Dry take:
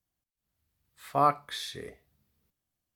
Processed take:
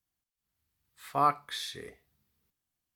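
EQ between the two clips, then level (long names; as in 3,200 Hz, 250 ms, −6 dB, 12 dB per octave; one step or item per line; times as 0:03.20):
low-shelf EQ 430 Hz −4.5 dB
parametric band 600 Hz −5.5 dB 0.38 octaves
0.0 dB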